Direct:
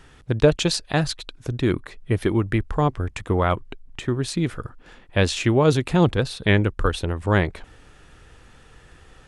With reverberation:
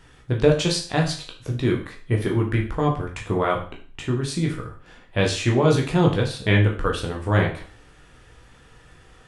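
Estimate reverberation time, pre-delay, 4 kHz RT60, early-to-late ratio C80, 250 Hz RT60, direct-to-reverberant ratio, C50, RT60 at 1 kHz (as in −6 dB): 0.40 s, 13 ms, 0.40 s, 13.0 dB, 0.40 s, −0.5 dB, 8.5 dB, 0.40 s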